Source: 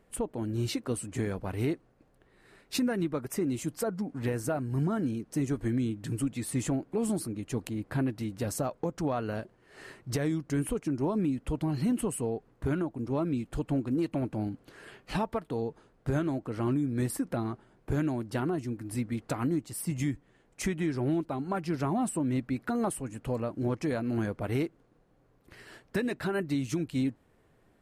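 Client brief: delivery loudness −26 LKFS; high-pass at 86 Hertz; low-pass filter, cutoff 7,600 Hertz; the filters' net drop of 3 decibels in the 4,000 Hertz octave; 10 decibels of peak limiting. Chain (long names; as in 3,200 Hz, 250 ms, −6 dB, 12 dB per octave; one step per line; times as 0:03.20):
high-pass filter 86 Hz
low-pass filter 7,600 Hz
parametric band 4,000 Hz −3.5 dB
level +11 dB
brickwall limiter −16 dBFS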